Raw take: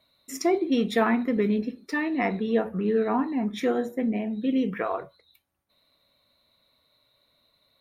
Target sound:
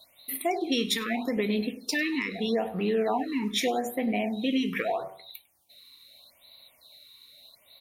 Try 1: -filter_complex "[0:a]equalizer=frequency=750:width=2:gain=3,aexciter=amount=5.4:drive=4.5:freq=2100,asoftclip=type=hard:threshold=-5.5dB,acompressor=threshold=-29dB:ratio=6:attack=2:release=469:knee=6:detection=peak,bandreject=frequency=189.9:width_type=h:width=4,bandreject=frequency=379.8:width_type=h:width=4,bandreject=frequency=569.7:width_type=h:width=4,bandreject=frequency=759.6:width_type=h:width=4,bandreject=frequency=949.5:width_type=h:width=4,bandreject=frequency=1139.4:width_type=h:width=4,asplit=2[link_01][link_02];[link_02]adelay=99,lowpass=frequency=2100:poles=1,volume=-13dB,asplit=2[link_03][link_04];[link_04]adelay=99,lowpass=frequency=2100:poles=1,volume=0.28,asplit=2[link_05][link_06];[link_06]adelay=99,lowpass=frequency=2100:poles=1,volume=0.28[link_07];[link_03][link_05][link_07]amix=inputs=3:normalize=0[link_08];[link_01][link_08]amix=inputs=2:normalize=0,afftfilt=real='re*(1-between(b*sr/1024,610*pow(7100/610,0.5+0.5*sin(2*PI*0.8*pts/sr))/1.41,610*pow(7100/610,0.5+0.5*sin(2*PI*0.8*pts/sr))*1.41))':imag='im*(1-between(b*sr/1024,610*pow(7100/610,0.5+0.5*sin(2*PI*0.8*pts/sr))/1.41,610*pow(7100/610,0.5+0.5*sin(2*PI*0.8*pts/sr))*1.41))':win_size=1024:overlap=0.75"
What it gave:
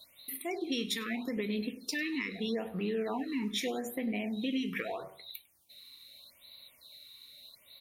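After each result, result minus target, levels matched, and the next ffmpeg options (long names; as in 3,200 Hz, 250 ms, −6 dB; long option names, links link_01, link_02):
downward compressor: peak gain reduction +7 dB; 1,000 Hz band −4.5 dB
-filter_complex "[0:a]equalizer=frequency=750:width=2:gain=3,aexciter=amount=5.4:drive=4.5:freq=2100,asoftclip=type=hard:threshold=-5.5dB,acompressor=threshold=-20.5dB:ratio=6:attack=2:release=469:knee=6:detection=peak,bandreject=frequency=189.9:width_type=h:width=4,bandreject=frequency=379.8:width_type=h:width=4,bandreject=frequency=569.7:width_type=h:width=4,bandreject=frequency=759.6:width_type=h:width=4,bandreject=frequency=949.5:width_type=h:width=4,bandreject=frequency=1139.4:width_type=h:width=4,asplit=2[link_01][link_02];[link_02]adelay=99,lowpass=frequency=2100:poles=1,volume=-13dB,asplit=2[link_03][link_04];[link_04]adelay=99,lowpass=frequency=2100:poles=1,volume=0.28,asplit=2[link_05][link_06];[link_06]adelay=99,lowpass=frequency=2100:poles=1,volume=0.28[link_07];[link_03][link_05][link_07]amix=inputs=3:normalize=0[link_08];[link_01][link_08]amix=inputs=2:normalize=0,afftfilt=real='re*(1-between(b*sr/1024,610*pow(7100/610,0.5+0.5*sin(2*PI*0.8*pts/sr))/1.41,610*pow(7100/610,0.5+0.5*sin(2*PI*0.8*pts/sr))*1.41))':imag='im*(1-between(b*sr/1024,610*pow(7100/610,0.5+0.5*sin(2*PI*0.8*pts/sr))/1.41,610*pow(7100/610,0.5+0.5*sin(2*PI*0.8*pts/sr))*1.41))':win_size=1024:overlap=0.75"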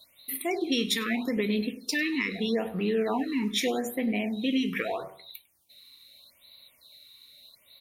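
1,000 Hz band −4.5 dB
-filter_complex "[0:a]equalizer=frequency=750:width=2:gain=12,aexciter=amount=5.4:drive=4.5:freq=2100,asoftclip=type=hard:threshold=-5.5dB,acompressor=threshold=-20.5dB:ratio=6:attack=2:release=469:knee=6:detection=peak,bandreject=frequency=189.9:width_type=h:width=4,bandreject=frequency=379.8:width_type=h:width=4,bandreject=frequency=569.7:width_type=h:width=4,bandreject=frequency=759.6:width_type=h:width=4,bandreject=frequency=949.5:width_type=h:width=4,bandreject=frequency=1139.4:width_type=h:width=4,asplit=2[link_01][link_02];[link_02]adelay=99,lowpass=frequency=2100:poles=1,volume=-13dB,asplit=2[link_03][link_04];[link_04]adelay=99,lowpass=frequency=2100:poles=1,volume=0.28,asplit=2[link_05][link_06];[link_06]adelay=99,lowpass=frequency=2100:poles=1,volume=0.28[link_07];[link_03][link_05][link_07]amix=inputs=3:normalize=0[link_08];[link_01][link_08]amix=inputs=2:normalize=0,afftfilt=real='re*(1-between(b*sr/1024,610*pow(7100/610,0.5+0.5*sin(2*PI*0.8*pts/sr))/1.41,610*pow(7100/610,0.5+0.5*sin(2*PI*0.8*pts/sr))*1.41))':imag='im*(1-between(b*sr/1024,610*pow(7100/610,0.5+0.5*sin(2*PI*0.8*pts/sr))/1.41,610*pow(7100/610,0.5+0.5*sin(2*PI*0.8*pts/sr))*1.41))':win_size=1024:overlap=0.75"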